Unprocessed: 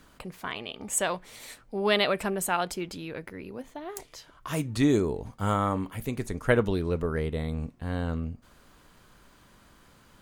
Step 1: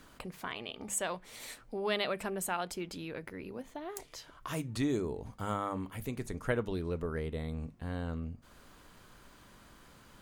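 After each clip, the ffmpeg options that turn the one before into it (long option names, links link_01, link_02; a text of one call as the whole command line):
ffmpeg -i in.wav -af "acompressor=threshold=-44dB:ratio=1.5,bandreject=frequency=50:width_type=h:width=6,bandreject=frequency=100:width_type=h:width=6,bandreject=frequency=150:width_type=h:width=6,bandreject=frequency=200:width_type=h:width=6" out.wav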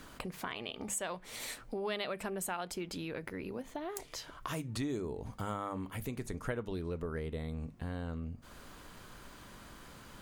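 ffmpeg -i in.wav -af "acompressor=threshold=-43dB:ratio=2.5,volume=5dB" out.wav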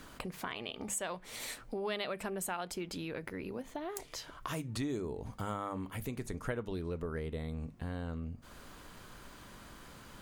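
ffmpeg -i in.wav -af anull out.wav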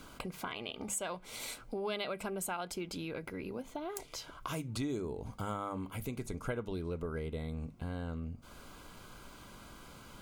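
ffmpeg -i in.wav -af "asuperstop=centerf=1800:order=20:qfactor=7.4" out.wav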